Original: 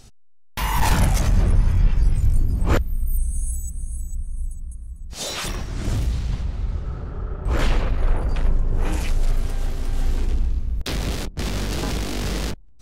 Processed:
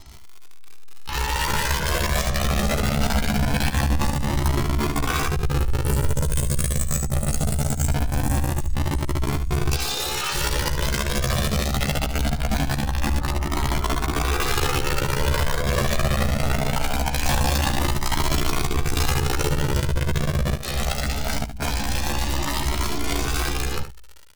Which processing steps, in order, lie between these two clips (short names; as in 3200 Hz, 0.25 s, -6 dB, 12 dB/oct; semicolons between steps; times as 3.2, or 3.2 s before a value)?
ending faded out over 2.91 s; recorder AGC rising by 19 dB/s; LPF 5800 Hz 12 dB/oct; bell 860 Hz +5 dB 0.42 oct; limiter -17 dBFS, peak gain reduction 11.5 dB; wrapped overs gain 18.5 dB; granular stretch 1.9×, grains 59 ms; crackle 88/s -32 dBFS; vibrato 1.5 Hz 16 cents; on a send: echo 73 ms -10 dB; on the sum: cascading flanger rising 0.22 Hz; gain +5.5 dB